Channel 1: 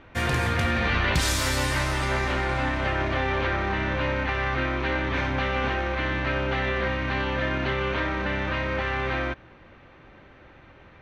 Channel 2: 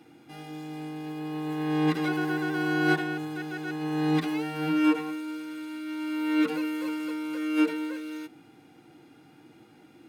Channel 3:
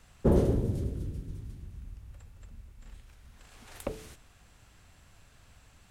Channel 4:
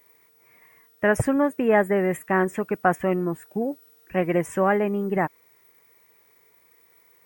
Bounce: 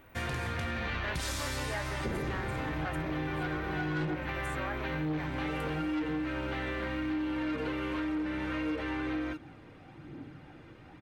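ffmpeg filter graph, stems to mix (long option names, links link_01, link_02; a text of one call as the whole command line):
ffmpeg -i stem1.wav -i stem2.wav -i stem3.wav -i stem4.wav -filter_complex "[0:a]volume=-7dB[link_01];[1:a]aemphasis=mode=reproduction:type=bsi,aphaser=in_gain=1:out_gain=1:delay=2.1:decay=0.61:speed=0.99:type=triangular,adelay=1100,volume=-1dB[link_02];[2:a]adelay=1800,volume=-5.5dB[link_03];[3:a]highpass=870,volume=-10dB,asplit=2[link_04][link_05];[link_05]apad=whole_len=493202[link_06];[link_02][link_06]sidechaincompress=threshold=-51dB:ratio=8:attack=16:release=178[link_07];[link_01][link_07][link_03][link_04]amix=inputs=4:normalize=0,asoftclip=type=tanh:threshold=-20.5dB,acompressor=threshold=-31dB:ratio=6" out.wav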